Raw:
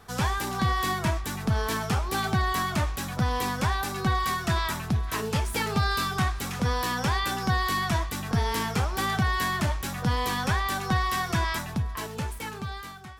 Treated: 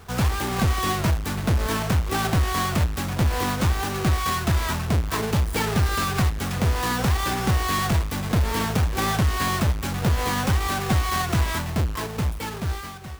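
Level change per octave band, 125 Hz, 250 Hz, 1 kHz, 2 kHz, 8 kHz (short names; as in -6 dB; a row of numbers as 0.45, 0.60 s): +5.5, +4.5, +1.5, +1.0, +4.5 dB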